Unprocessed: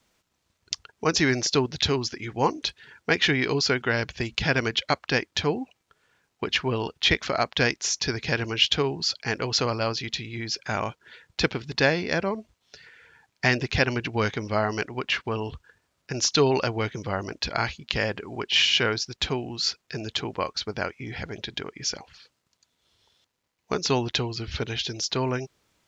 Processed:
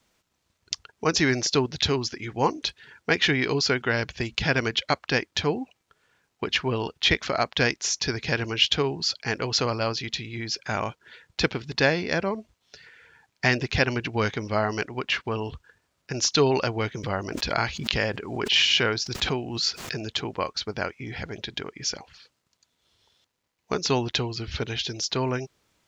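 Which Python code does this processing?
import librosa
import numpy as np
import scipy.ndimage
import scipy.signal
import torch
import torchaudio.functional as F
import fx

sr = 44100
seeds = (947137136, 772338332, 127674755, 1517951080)

y = fx.pre_swell(x, sr, db_per_s=60.0, at=(17.03, 20.11))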